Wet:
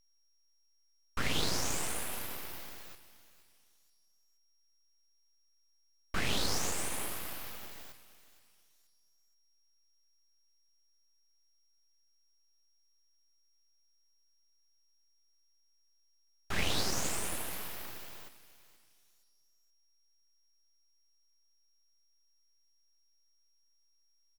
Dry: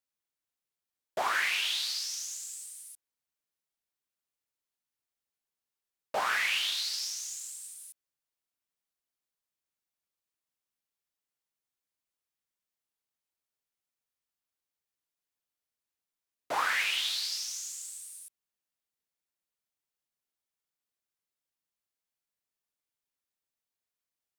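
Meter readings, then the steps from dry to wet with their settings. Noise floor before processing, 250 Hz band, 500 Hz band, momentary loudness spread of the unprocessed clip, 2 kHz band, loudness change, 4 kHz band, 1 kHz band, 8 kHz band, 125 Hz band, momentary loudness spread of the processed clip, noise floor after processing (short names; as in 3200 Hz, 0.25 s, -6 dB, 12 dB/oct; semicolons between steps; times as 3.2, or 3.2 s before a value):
under -85 dBFS, +15.0 dB, 0.0 dB, 17 LU, -8.5 dB, -5.0 dB, -6.5 dB, -7.0 dB, -1.5 dB, n/a, 17 LU, -70 dBFS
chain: feedback echo 0.474 s, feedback 33%, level -16 dB; whine 2800 Hz -67 dBFS; full-wave rectifier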